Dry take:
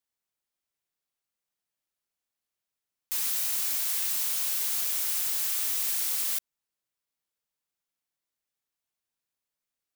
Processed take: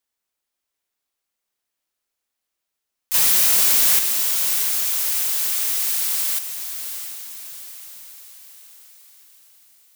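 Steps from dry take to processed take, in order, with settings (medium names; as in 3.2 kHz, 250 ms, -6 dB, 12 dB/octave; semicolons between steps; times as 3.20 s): peaking EQ 130 Hz -14.5 dB 0.52 oct; 3.14–3.99 s: waveshaping leveller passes 3; echo that smears into a reverb 692 ms, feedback 50%, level -8.5 dB; trim +6 dB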